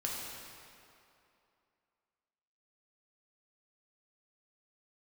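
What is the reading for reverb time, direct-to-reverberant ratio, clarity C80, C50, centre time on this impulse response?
2.7 s, -4.0 dB, 0.5 dB, -1.0 dB, 0.131 s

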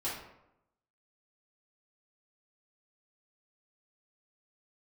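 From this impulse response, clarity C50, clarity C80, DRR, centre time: 2.5 dB, 7.0 dB, -9.5 dB, 50 ms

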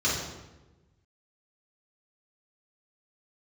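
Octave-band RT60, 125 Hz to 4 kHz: 1.7, 1.4, 1.2, 1.0, 0.90, 0.75 s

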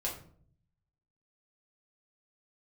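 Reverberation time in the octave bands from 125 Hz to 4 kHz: 1.2, 0.85, 0.60, 0.45, 0.40, 0.30 s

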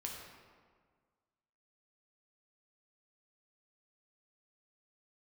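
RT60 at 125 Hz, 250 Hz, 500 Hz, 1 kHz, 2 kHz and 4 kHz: 1.8, 1.8, 1.7, 1.7, 1.4, 1.0 s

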